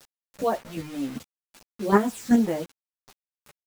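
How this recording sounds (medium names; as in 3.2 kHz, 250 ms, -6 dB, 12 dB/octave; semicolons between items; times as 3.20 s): chopped level 2.6 Hz, depth 60%, duty 10%; phasing stages 6, 2.1 Hz, lowest notch 750–4800 Hz; a quantiser's noise floor 8-bit, dither none; a shimmering, thickened sound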